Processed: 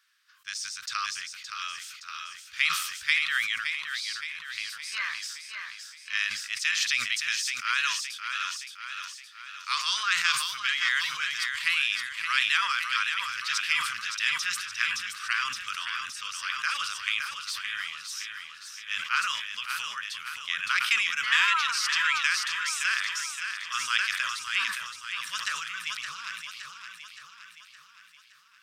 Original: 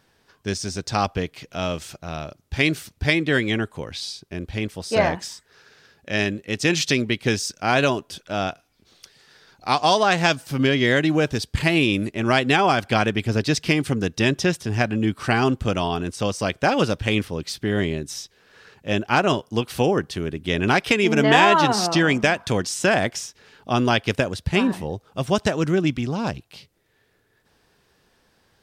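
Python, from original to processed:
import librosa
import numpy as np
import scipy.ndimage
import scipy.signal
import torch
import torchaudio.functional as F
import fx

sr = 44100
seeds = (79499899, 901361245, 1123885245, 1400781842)

p1 = scipy.signal.sosfilt(scipy.signal.ellip(4, 1.0, 40, 1200.0, 'highpass', fs=sr, output='sos'), x)
p2 = p1 + fx.echo_feedback(p1, sr, ms=568, feedback_pct=54, wet_db=-7.0, dry=0)
p3 = fx.sustainer(p2, sr, db_per_s=51.0)
y = p3 * 10.0 ** (-3.5 / 20.0)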